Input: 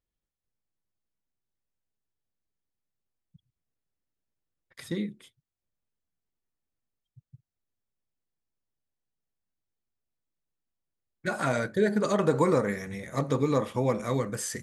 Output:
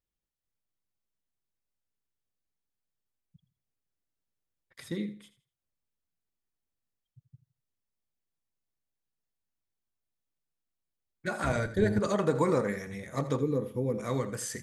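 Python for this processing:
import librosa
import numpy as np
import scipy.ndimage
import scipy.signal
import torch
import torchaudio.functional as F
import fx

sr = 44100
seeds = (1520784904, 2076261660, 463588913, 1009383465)

y = fx.octave_divider(x, sr, octaves=1, level_db=-1.0, at=(11.43, 11.99))
y = fx.spec_box(y, sr, start_s=13.4, length_s=0.59, low_hz=520.0, high_hz=9800.0, gain_db=-14)
y = fx.echo_feedback(y, sr, ms=82, feedback_pct=26, wet_db=-14.5)
y = F.gain(torch.from_numpy(y), -3.0).numpy()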